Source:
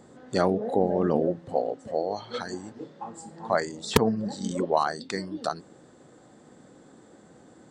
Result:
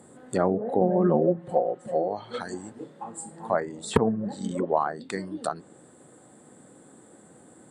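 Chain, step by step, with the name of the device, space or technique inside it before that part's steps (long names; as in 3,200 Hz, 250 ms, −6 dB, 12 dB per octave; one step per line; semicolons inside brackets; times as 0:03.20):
treble cut that deepens with the level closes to 1,500 Hz, closed at −22 dBFS
budget condenser microphone (high-pass filter 72 Hz; high shelf with overshoot 7,300 Hz +10 dB, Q 3)
0:00.81–0:02.08: comb filter 5.6 ms, depth 79%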